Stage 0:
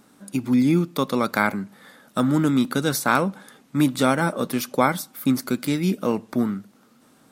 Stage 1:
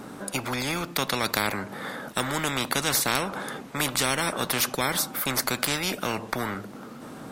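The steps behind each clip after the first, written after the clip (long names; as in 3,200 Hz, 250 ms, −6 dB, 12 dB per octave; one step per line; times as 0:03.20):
high-shelf EQ 2,300 Hz −10.5 dB
every bin compressed towards the loudest bin 4 to 1
level +1.5 dB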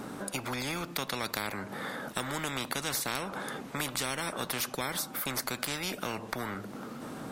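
downward compressor 2 to 1, threshold −36 dBFS, peak gain reduction 9 dB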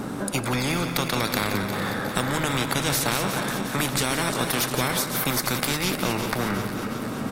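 feedback delay that plays each chunk backwards 181 ms, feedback 78%, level −9 dB
low-shelf EQ 230 Hz +7 dB
slap from a distant wall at 30 metres, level −9 dB
level +7 dB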